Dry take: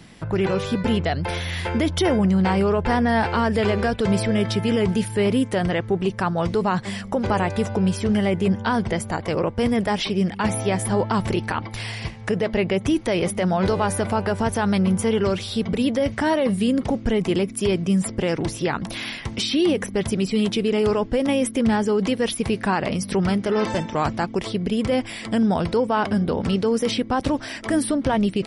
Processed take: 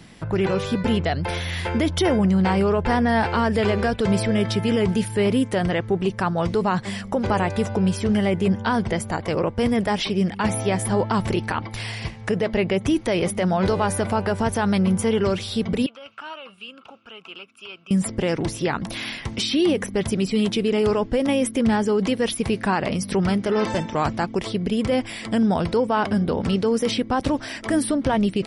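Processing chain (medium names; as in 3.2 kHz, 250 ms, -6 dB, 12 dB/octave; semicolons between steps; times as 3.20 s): 15.86–17.91 s: two resonant band-passes 1.9 kHz, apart 1 oct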